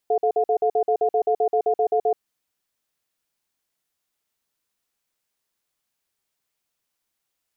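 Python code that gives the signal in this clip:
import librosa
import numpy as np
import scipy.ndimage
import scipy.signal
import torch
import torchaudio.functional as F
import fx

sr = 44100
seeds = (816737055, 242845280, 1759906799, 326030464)

y = fx.cadence(sr, length_s=2.08, low_hz=436.0, high_hz=711.0, on_s=0.08, off_s=0.05, level_db=-19.5)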